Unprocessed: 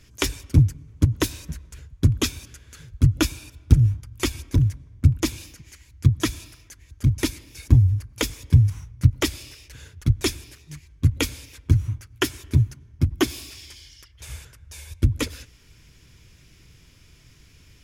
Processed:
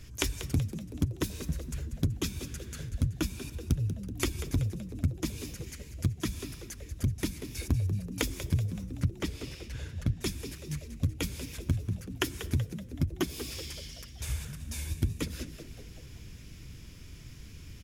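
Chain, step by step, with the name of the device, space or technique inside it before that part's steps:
0:08.92–0:10.18: high-shelf EQ 6,100 Hz −10.5 dB
ASMR close-microphone chain (low-shelf EQ 210 Hz +6.5 dB; downward compressor 5 to 1, threshold −28 dBFS, peak gain reduction 23 dB; high-shelf EQ 11,000 Hz +5 dB)
echo with shifted repeats 189 ms, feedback 51%, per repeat +82 Hz, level −12 dB

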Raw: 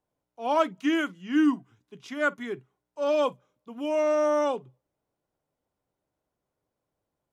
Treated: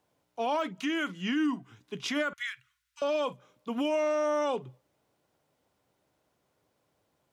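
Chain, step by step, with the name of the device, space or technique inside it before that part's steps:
broadcast voice chain (high-pass filter 71 Hz; de-essing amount 85%; downward compressor 4 to 1, threshold −32 dBFS, peak gain reduction 12.5 dB; parametric band 3,100 Hz +5 dB 2.4 octaves; brickwall limiter −29.5 dBFS, peak gain reduction 9 dB)
0:02.33–0:03.02: inverse Chebyshev band-stop filter 170–690 Hz, stop band 50 dB
level +8 dB

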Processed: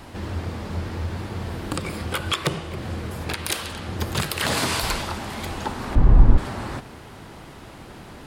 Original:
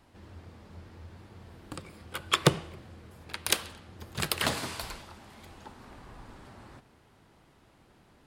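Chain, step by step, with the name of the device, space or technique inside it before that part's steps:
loud club master (downward compressor 2.5 to 1, threshold −39 dBFS, peak gain reduction 16 dB; hard clipping −20.5 dBFS, distortion −31 dB; boost into a limiter +30 dB)
0:05.95–0:06.38: spectral tilt −4.5 dB per octave
level −10.5 dB

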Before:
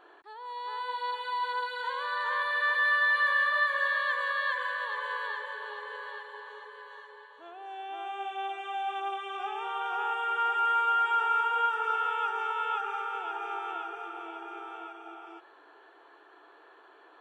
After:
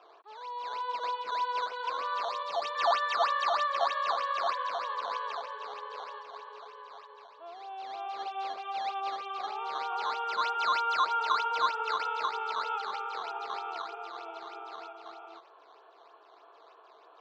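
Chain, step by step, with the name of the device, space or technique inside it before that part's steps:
circuit-bent sampling toy (sample-and-hold swept by an LFO 10×, swing 160% 3.2 Hz; loudspeaker in its box 400–4,500 Hz, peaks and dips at 460 Hz +6 dB, 660 Hz +9 dB, 1,100 Hz +9 dB, 1,800 Hz −9 dB, 2,600 Hz +3 dB, 4,000 Hz +4 dB)
0:02.25–0:02.75: parametric band 1,500 Hz −10.5 dB 0.94 octaves
level −4.5 dB

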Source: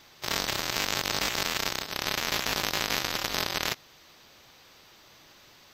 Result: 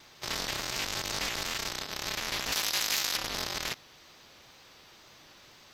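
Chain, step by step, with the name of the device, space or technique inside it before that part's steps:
compact cassette (soft clipping −19 dBFS, distortion −7 dB; low-pass filter 12,000 Hz 12 dB per octave; tape wow and flutter; white noise bed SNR 41 dB)
0:02.52–0:03.17: spectral tilt +2.5 dB per octave

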